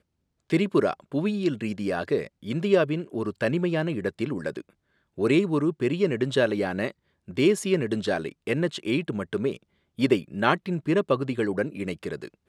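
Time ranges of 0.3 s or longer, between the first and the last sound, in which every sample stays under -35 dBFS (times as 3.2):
4.61–5.18
6.91–7.28
9.56–9.99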